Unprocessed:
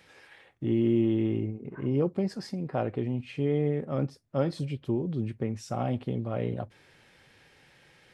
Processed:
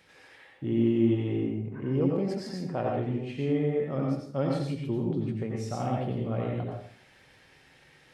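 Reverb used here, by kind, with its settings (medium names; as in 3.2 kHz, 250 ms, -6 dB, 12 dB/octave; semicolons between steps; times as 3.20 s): plate-style reverb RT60 0.56 s, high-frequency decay 0.85×, pre-delay 75 ms, DRR -1.5 dB; trim -2.5 dB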